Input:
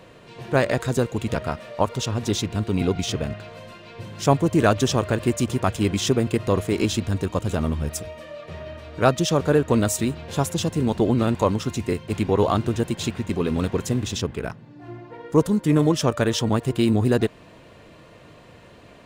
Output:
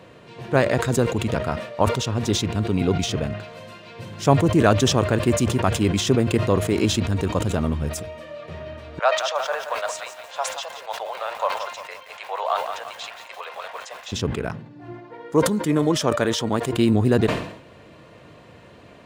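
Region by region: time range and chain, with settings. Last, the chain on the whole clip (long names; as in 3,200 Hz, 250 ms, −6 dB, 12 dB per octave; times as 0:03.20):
0:03.43–0:04.15: high-shelf EQ 4,200 Hz +5 dB + mains-hum notches 50/100/150/200/250/300/350/400/450/500 Hz
0:08.99–0:14.12: Butterworth high-pass 590 Hz 48 dB per octave + high-frequency loss of the air 100 metres + feedback echo at a low word length 174 ms, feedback 55%, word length 7 bits, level −8 dB
0:14.92–0:16.73: low-shelf EQ 150 Hz −12 dB + notch filter 2,700 Hz, Q 18
whole clip: high-pass filter 60 Hz; high-shelf EQ 4,800 Hz −4.5 dB; level that may fall only so fast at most 82 dB per second; level +1 dB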